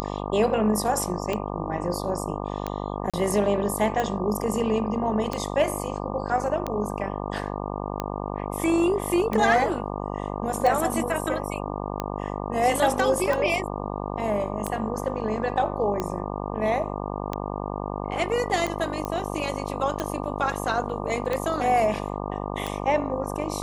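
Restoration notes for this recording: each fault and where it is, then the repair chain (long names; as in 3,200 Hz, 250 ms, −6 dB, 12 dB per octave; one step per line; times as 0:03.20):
mains buzz 50 Hz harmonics 24 −31 dBFS
scratch tick 45 rpm −13 dBFS
0:03.10–0:03.14: drop-out 36 ms
0:19.05: click −17 dBFS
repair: click removal
hum removal 50 Hz, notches 24
repair the gap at 0:03.10, 36 ms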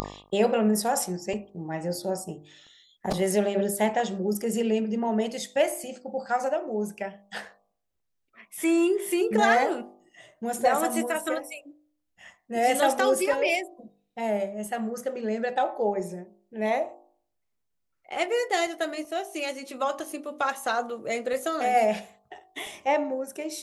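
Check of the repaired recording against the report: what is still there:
0:19.05: click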